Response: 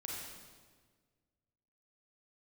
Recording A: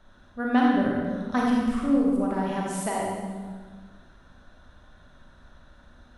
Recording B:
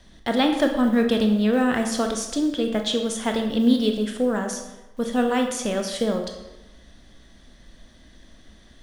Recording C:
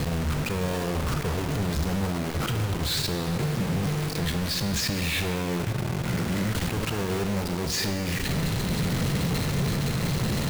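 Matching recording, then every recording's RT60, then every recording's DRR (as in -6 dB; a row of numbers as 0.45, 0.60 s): A; 1.6, 1.0, 2.3 s; -3.5, 3.5, 7.0 dB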